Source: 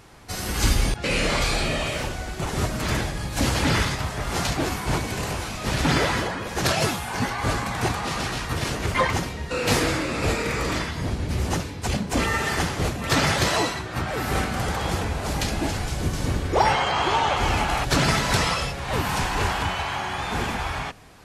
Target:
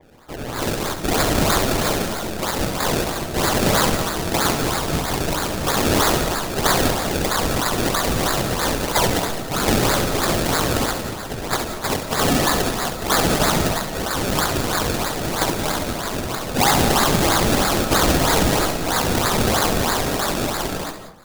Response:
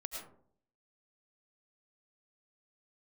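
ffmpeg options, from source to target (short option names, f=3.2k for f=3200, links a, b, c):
-filter_complex "[0:a]highpass=f=1k:w=0.5412,highpass=f=1k:w=1.3066,dynaudnorm=f=190:g=11:m=7dB,asplit=2[a][b];[b]aeval=exprs='0.106*(abs(mod(val(0)/0.106+3,4)-2)-1)':c=same,volume=-5dB[c];[a][c]amix=inputs=2:normalize=0,afreqshift=-65,acrusher=samples=30:mix=1:aa=0.000001:lfo=1:lforange=30:lforate=3.1,asplit=2[d][e];[1:a]atrim=start_sample=2205,adelay=68[f];[e][f]afir=irnorm=-1:irlink=0,volume=-5dB[g];[d][g]amix=inputs=2:normalize=0,adynamicequalizer=threshold=0.02:dfrequency=3100:dqfactor=0.7:tfrequency=3100:tqfactor=0.7:attack=5:release=100:ratio=0.375:range=3:mode=boostabove:tftype=highshelf,volume=-1dB"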